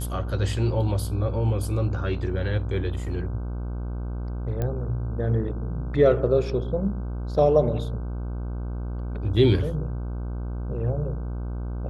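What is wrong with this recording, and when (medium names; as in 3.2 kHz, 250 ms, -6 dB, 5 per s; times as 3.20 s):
buzz 60 Hz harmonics 26 -30 dBFS
4.62 s: pop -16 dBFS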